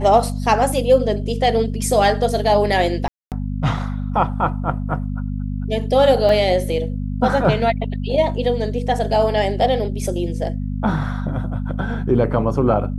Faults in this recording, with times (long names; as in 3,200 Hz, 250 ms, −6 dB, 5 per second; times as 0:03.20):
mains hum 50 Hz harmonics 5 −24 dBFS
0:03.08–0:03.32: drop-out 238 ms
0:06.29: drop-out 2.1 ms